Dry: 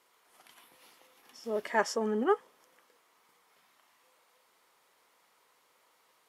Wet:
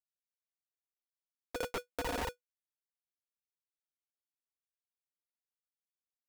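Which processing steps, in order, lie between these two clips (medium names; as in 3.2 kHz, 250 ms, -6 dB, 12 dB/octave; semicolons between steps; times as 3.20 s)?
median filter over 9 samples; peaking EQ 6.3 kHz +6 dB 0.79 oct; comb 6.7 ms, depth 56%; in parallel at -6 dB: hard clipper -25.5 dBFS, distortion -8 dB; on the sum: granulator 100 ms, grains 20 per s; flange 1.7 Hz, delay 9.8 ms, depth 6.4 ms, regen -81%; Schmitt trigger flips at -30 dBFS; low-pass that closes with the level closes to 2.7 kHz; polarity switched at an audio rate 490 Hz; trim +8 dB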